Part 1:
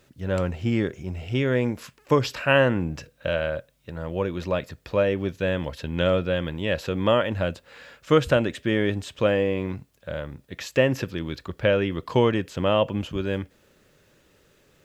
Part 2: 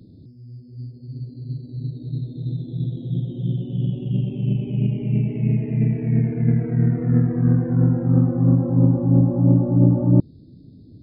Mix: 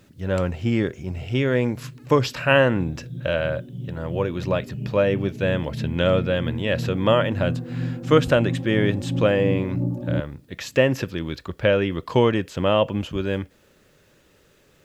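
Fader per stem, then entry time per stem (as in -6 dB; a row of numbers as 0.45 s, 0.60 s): +2.0 dB, -10.0 dB; 0.00 s, 0.00 s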